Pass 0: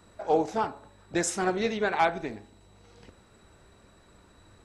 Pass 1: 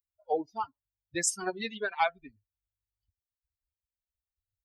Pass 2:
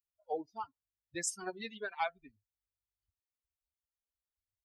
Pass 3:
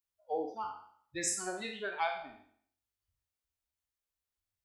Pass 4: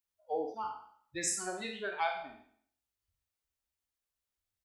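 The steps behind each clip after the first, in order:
expander on every frequency bin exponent 3; tilt EQ +2 dB/octave
short-mantissa float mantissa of 8-bit; trim -7.5 dB
spectral sustain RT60 0.60 s; flutter echo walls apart 8.5 m, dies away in 0.26 s
doubling 45 ms -12 dB

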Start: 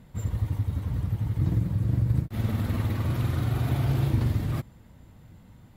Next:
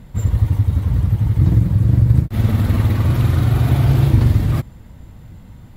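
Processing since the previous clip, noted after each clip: bass shelf 75 Hz +9 dB; trim +8.5 dB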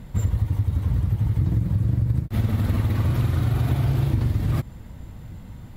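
compression, threshold -18 dBFS, peak gain reduction 11 dB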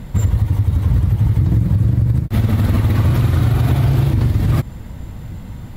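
peak limiter -15 dBFS, peak gain reduction 4.5 dB; trim +8.5 dB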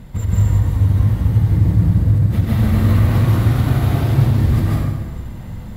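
plate-style reverb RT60 1.4 s, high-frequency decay 0.75×, pre-delay 120 ms, DRR -5.5 dB; trim -6 dB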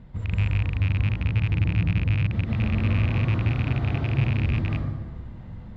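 rattle on loud lows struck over -12 dBFS, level -10 dBFS; distance through air 200 m; trim -9 dB

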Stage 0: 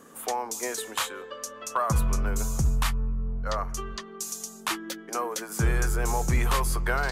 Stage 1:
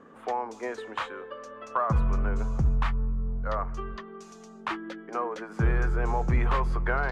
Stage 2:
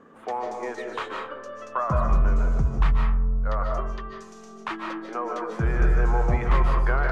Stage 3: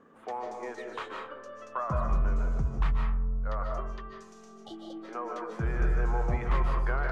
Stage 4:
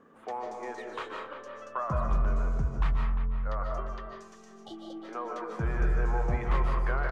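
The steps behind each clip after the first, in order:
low-pass 2 kHz 12 dB/octave
algorithmic reverb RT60 0.71 s, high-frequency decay 0.4×, pre-delay 110 ms, DRR 1 dB
spectral replace 4.66–5.01 s, 840–2900 Hz before; trim -6.5 dB
speakerphone echo 350 ms, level -10 dB

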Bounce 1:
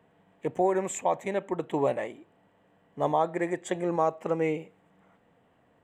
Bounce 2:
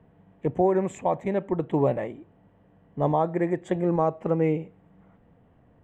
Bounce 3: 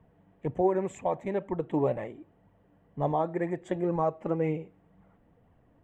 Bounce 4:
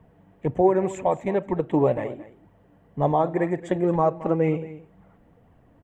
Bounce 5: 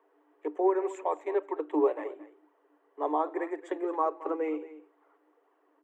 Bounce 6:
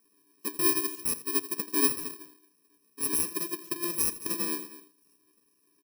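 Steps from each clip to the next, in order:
RIAA curve playback
flange 2 Hz, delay 0.8 ms, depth 2.9 ms, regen +54%
delay 222 ms -16 dB; trim +6.5 dB
rippled Chebyshev high-pass 290 Hz, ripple 9 dB; trim -1.5 dB
bit-reversed sample order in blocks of 64 samples; delay 83 ms -16 dB

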